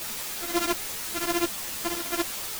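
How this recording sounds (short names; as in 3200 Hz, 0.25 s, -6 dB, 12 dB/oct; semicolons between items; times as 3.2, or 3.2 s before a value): a buzz of ramps at a fixed pitch in blocks of 128 samples; chopped level 1.9 Hz, depth 60%, duty 75%; a quantiser's noise floor 6-bit, dither triangular; a shimmering, thickened sound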